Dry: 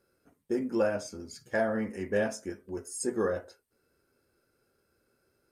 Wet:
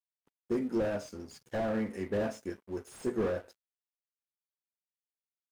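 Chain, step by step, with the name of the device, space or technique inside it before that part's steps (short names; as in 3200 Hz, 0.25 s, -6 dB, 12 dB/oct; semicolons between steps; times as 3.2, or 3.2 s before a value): early transistor amplifier (crossover distortion -56 dBFS; slew limiter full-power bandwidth 20 Hz)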